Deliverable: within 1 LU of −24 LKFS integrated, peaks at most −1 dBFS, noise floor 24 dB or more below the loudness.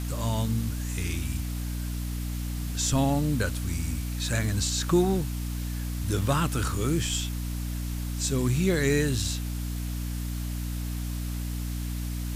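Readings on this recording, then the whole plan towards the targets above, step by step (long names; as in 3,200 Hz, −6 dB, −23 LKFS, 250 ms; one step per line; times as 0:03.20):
mains hum 60 Hz; hum harmonics up to 300 Hz; level of the hum −29 dBFS; background noise floor −32 dBFS; target noise floor −53 dBFS; integrated loudness −29.0 LKFS; sample peak −11.0 dBFS; target loudness −24.0 LKFS
→ hum removal 60 Hz, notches 5
broadband denoise 21 dB, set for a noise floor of −32 dBFS
level +5 dB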